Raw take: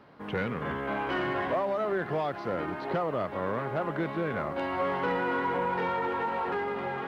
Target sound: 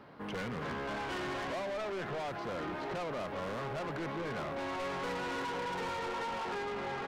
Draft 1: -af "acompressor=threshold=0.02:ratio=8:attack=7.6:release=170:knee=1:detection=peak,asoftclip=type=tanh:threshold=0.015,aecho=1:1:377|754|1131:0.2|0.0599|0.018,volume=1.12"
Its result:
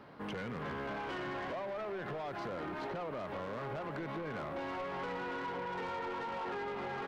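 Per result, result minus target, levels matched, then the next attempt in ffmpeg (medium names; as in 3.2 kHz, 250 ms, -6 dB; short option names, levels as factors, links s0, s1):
echo 142 ms late; compression: peak gain reduction +10 dB
-af "acompressor=threshold=0.02:ratio=8:attack=7.6:release=170:knee=1:detection=peak,asoftclip=type=tanh:threshold=0.015,aecho=1:1:235|470|705:0.2|0.0599|0.018,volume=1.12"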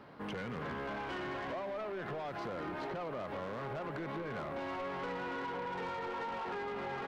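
compression: peak gain reduction +10 dB
-af "asoftclip=type=tanh:threshold=0.015,aecho=1:1:235|470|705:0.2|0.0599|0.018,volume=1.12"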